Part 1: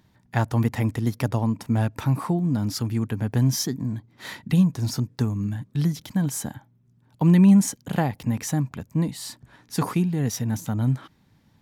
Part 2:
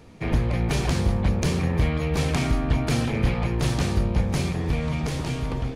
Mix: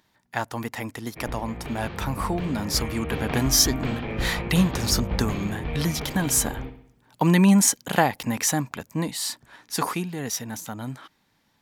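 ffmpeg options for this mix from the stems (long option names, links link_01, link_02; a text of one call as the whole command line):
ffmpeg -i stem1.wav -i stem2.wav -filter_complex "[0:a]lowshelf=frequency=410:gain=-10.5,volume=1.5dB[link_01];[1:a]lowpass=frequency=3300:width=0.5412,lowpass=frequency=3300:width=1.3066,adelay=950,volume=-11.5dB,asplit=2[link_02][link_03];[link_03]volume=-9.5dB,aecho=0:1:62|124|186|248|310|372|434:1|0.51|0.26|0.133|0.0677|0.0345|0.0176[link_04];[link_01][link_02][link_04]amix=inputs=3:normalize=0,equalizer=frequency=110:width_type=o:width=1.6:gain=-7,dynaudnorm=framelen=240:gausssize=21:maxgain=9.5dB" out.wav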